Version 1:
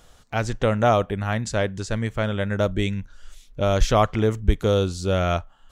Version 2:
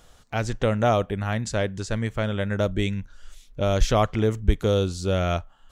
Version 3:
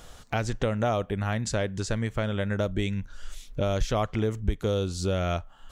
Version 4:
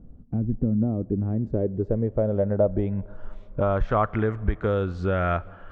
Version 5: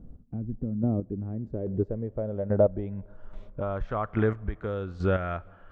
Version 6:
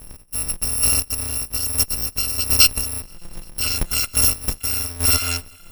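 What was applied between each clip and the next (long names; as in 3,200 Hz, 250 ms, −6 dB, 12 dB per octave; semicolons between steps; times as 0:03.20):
dynamic equaliser 1,100 Hz, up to −3 dB, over −29 dBFS, Q 0.93; level −1 dB
downward compressor 2.5 to 1, threshold −34 dBFS, peak gain reduction 14.5 dB; level +6 dB
low-pass filter sweep 240 Hz → 1,600 Hz, 0:00.71–0:04.25; on a send at −23 dB: convolution reverb RT60 3.4 s, pre-delay 84 ms; on the sum: level +2 dB
square-wave tremolo 1.2 Hz, depth 60%, duty 20%
samples in bit-reversed order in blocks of 256 samples; harmonic generator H 8 −22 dB, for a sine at −10.5 dBFS; level +8 dB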